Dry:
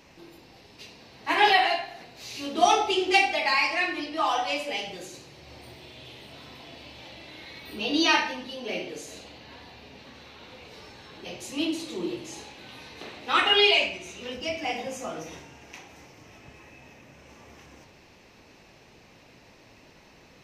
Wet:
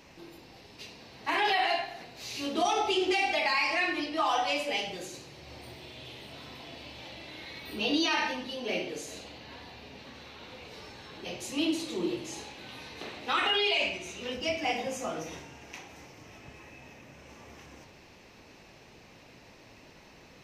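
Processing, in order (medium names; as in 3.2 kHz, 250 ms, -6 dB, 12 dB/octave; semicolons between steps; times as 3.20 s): peak limiter -18.5 dBFS, peak gain reduction 11 dB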